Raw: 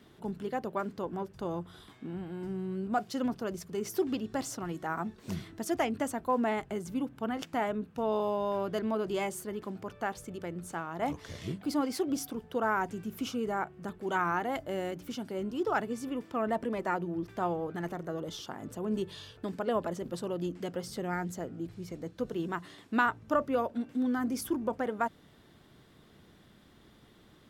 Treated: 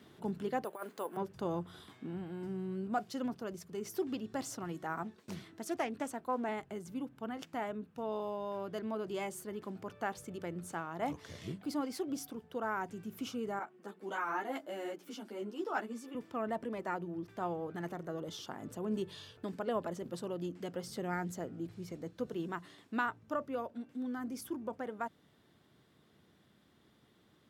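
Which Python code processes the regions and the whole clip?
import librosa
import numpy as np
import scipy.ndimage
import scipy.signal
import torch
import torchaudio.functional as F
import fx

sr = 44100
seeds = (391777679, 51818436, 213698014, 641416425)

y = fx.chain(x, sr, fx.highpass(hz=510.0, slope=12),
    fx.over_compress(threshold_db=-37.0, ratio=-0.5),
    fx.resample_bad(factor=4, down='filtered', up='hold'), at=(0.64, 1.17))
y = fx.chain(y, sr, fx.highpass(hz=190.0, slope=6),
    fx.gate_hold(open_db=-42.0, close_db=-49.0, hold_ms=71.0, range_db=-21, attack_ms=1.4, release_ms=100.0),
    fx.doppler_dist(depth_ms=0.2), at=(5.03, 6.49))
y = fx.chain(y, sr, fx.highpass(hz=220.0, slope=24),
    fx.ensemble(), at=(13.59, 16.15))
y = scipy.signal.sosfilt(scipy.signal.butter(2, 83.0, 'highpass', fs=sr, output='sos'), y)
y = fx.rider(y, sr, range_db=10, speed_s=2.0)
y = y * 10.0 ** (-6.0 / 20.0)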